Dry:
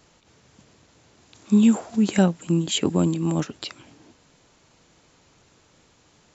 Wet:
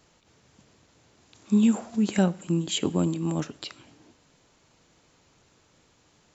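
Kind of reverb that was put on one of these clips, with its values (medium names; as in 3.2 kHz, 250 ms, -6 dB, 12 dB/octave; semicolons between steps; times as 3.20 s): Schroeder reverb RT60 0.68 s, combs from 26 ms, DRR 19 dB; trim -4 dB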